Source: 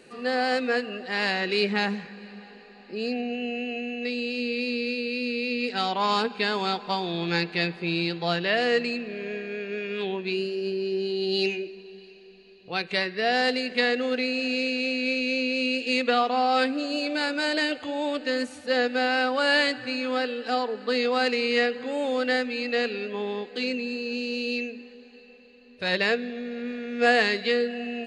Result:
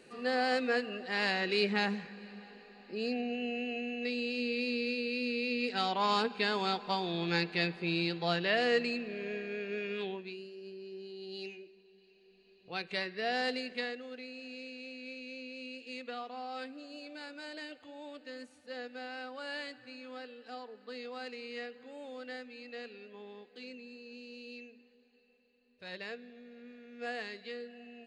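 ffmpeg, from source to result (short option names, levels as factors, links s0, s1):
-af "volume=1.41,afade=t=out:st=9.88:d=0.48:silence=0.237137,afade=t=in:st=11.96:d=0.76:silence=0.375837,afade=t=out:st=13.59:d=0.43:silence=0.334965"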